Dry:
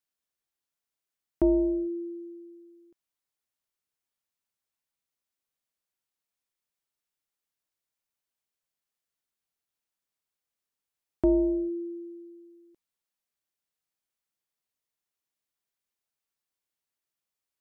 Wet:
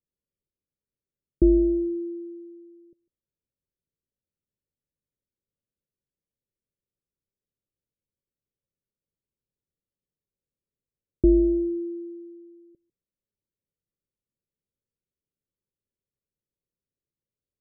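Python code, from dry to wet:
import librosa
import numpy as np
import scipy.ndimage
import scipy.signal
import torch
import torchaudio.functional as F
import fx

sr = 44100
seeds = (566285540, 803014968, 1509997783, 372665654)

y = scipy.signal.sosfilt(scipy.signal.cheby1(6, 3, 580.0, 'lowpass', fs=sr, output='sos'), x)
y = fx.low_shelf(y, sr, hz=220.0, db=9.0)
y = y + 10.0 ** (-23.0 / 20.0) * np.pad(y, (int(150 * sr / 1000.0), 0))[:len(y)]
y = F.gain(torch.from_numpy(y), 4.0).numpy()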